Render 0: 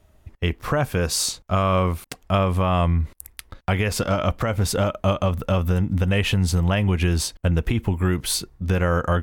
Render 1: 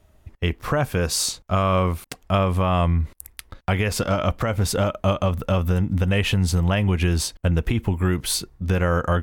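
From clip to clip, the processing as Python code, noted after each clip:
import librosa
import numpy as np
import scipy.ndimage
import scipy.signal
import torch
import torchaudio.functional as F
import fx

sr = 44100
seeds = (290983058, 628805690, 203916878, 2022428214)

y = x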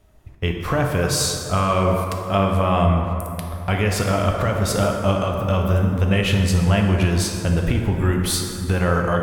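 y = fx.rev_plate(x, sr, seeds[0], rt60_s=2.9, hf_ratio=0.45, predelay_ms=0, drr_db=1.0)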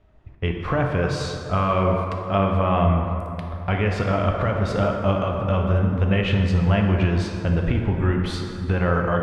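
y = scipy.signal.sosfilt(scipy.signal.butter(2, 2900.0, 'lowpass', fs=sr, output='sos'), x)
y = F.gain(torch.from_numpy(y), -1.5).numpy()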